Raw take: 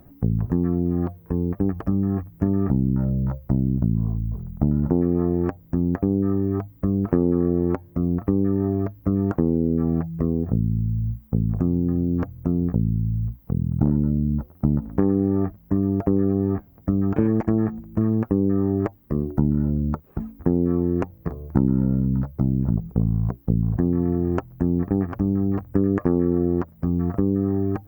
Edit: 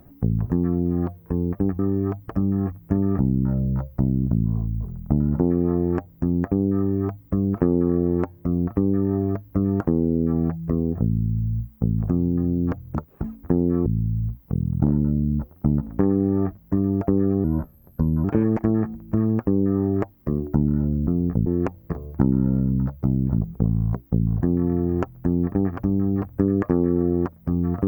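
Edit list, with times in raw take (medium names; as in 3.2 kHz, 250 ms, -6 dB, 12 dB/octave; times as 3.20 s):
6.27–6.76 s: copy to 1.79 s
12.46–12.85 s: swap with 19.91–20.82 s
16.43–17.08 s: speed 81%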